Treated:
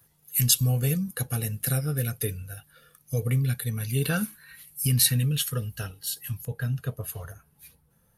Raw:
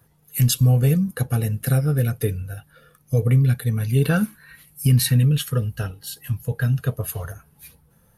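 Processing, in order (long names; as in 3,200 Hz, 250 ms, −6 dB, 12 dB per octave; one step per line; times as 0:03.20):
high-shelf EQ 2,200 Hz +11.5 dB, from 0:06.45 +2.5 dB
level −8 dB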